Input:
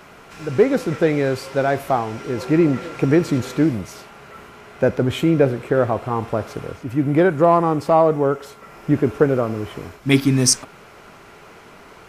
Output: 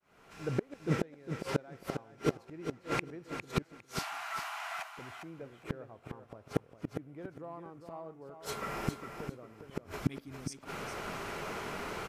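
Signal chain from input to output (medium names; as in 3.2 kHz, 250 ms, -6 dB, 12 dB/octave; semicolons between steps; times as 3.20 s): fade-in on the opening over 2.11 s; inverted gate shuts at -19 dBFS, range -35 dB; 3.62–4.97 s: steep high-pass 660 Hz 96 dB/octave; on a send: feedback delay 405 ms, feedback 19%, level -8 dB; on the sum: trim +3.5 dB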